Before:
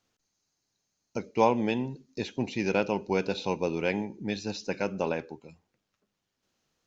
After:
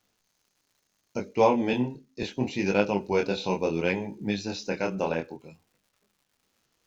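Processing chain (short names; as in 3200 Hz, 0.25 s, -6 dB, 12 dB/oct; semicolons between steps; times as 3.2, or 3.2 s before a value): chorus 0.71 Hz, delay 19.5 ms, depth 7.3 ms; crackle 240/s -61 dBFS; 1.73–2.23 three-band expander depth 70%; gain +5 dB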